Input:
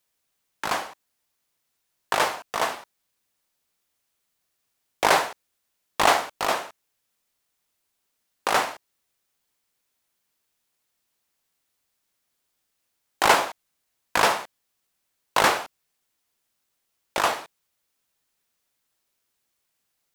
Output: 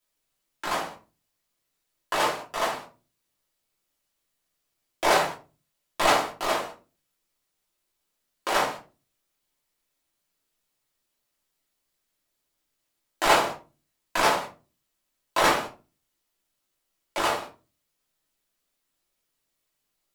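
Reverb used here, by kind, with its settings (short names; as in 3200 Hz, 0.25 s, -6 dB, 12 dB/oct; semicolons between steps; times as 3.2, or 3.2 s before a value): shoebox room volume 130 m³, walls furnished, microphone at 2.9 m; gain -8 dB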